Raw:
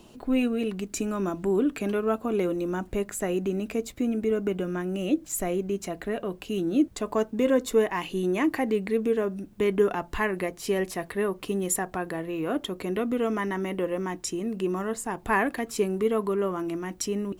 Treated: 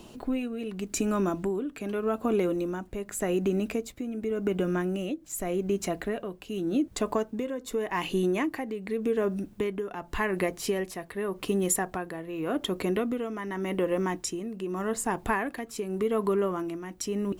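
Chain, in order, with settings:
downward compressor 5 to 1, threshold −25 dBFS, peak gain reduction 8.5 dB
amplitude tremolo 0.86 Hz, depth 64%
level +3.5 dB

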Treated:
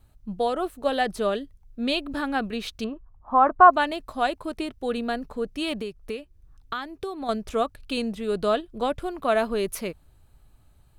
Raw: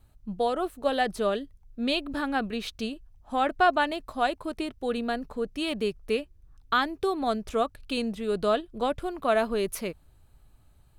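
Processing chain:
0:02.84–0:03.71: low-pass with resonance 1,100 Hz, resonance Q 4.9
0:05.81–0:07.29: downward compressor 3 to 1, threshold −33 dBFS, peak gain reduction 10.5 dB
level +1.5 dB

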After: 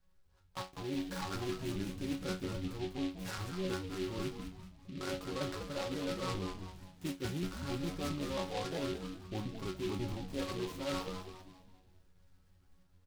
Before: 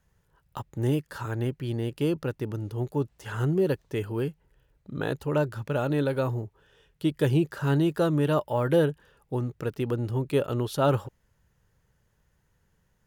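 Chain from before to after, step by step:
pitch shifter gated in a rhythm −2.5 semitones, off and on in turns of 135 ms
dynamic equaliser 1,200 Hz, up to +4 dB, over −42 dBFS, Q 1.3
resonators tuned to a chord F#3 fifth, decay 0.27 s
reversed playback
downward compressor 16 to 1, threshold −47 dBFS, peak gain reduction 19.5 dB
reversed playback
low-shelf EQ 83 Hz +9 dB
automatic gain control gain up to 5 dB
on a send: echo with shifted repeats 198 ms, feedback 43%, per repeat −92 Hz, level −7 dB
on the sum: short delay modulated by noise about 2,900 Hz, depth 0.09 ms
level +7 dB

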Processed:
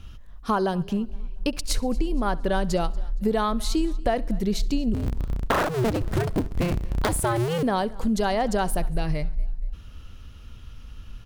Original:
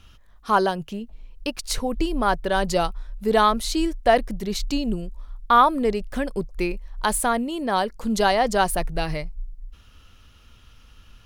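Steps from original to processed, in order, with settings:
0:04.94–0:07.63: sub-harmonics by changed cycles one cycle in 2, inverted
low-shelf EQ 370 Hz +10 dB
downward compressor 6 to 1, threshold −20 dBFS, peak gain reduction 12 dB
repeating echo 68 ms, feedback 44%, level −22.5 dB
feedback echo with a swinging delay time 233 ms, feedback 40%, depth 95 cents, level −23 dB

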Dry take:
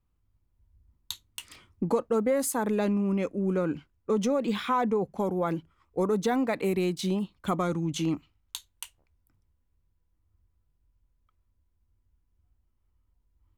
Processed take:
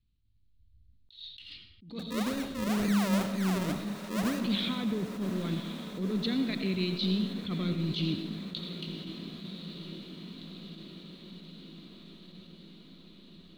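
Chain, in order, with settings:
drawn EQ curve 230 Hz 0 dB, 830 Hz −23 dB, 4,200 Hz +10 dB, 6,900 Hz −27 dB
0:01.99–0:04.39: sample-and-hold swept by an LFO 40×, swing 100% 2 Hz
feedback delay with all-pass diffusion 1,074 ms, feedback 68%, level −11 dB
convolution reverb RT60 0.95 s, pre-delay 45 ms, DRR 7.5 dB
level that may rise only so fast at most 120 dB per second

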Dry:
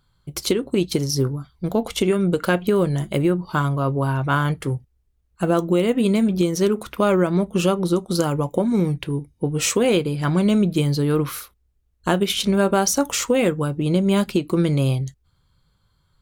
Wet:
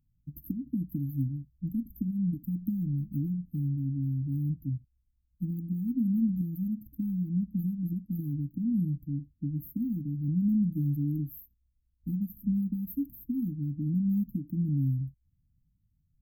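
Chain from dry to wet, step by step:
linear-phase brick-wall band-stop 310–12,000 Hz
level −7.5 dB

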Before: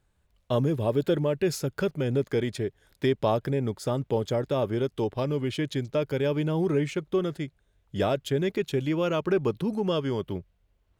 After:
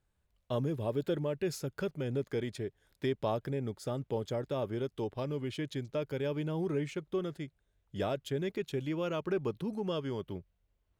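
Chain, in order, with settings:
0:03.57–0:04.03: notch filter 1,000 Hz, Q 6.7
level −8 dB

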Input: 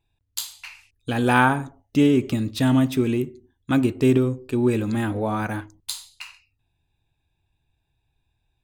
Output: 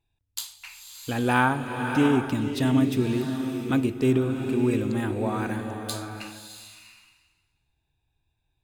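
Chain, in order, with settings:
slow-attack reverb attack 670 ms, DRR 5 dB
level −4 dB

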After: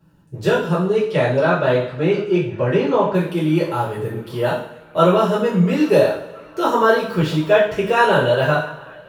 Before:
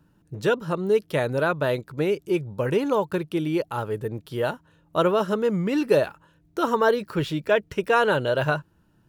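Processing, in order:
0:00.77–0:03.13: low-pass filter 7,200 Hz → 3,900 Hz 12 dB per octave
feedback echo with a band-pass in the loop 679 ms, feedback 75%, band-pass 1,500 Hz, level −23 dB
coupled-rooms reverb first 0.53 s, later 1.6 s, DRR −9.5 dB
level −3.5 dB

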